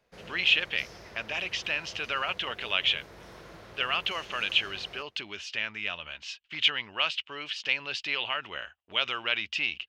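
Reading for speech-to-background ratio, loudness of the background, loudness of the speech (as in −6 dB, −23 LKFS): 19.5 dB, −48.5 LKFS, −29.0 LKFS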